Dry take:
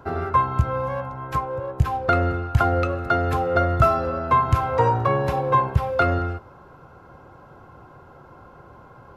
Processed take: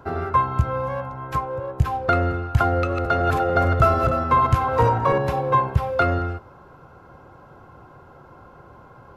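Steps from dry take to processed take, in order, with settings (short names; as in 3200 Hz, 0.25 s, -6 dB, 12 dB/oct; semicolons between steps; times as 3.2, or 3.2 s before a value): 2.76–5.18 regenerating reverse delay 0.148 s, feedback 48%, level -5 dB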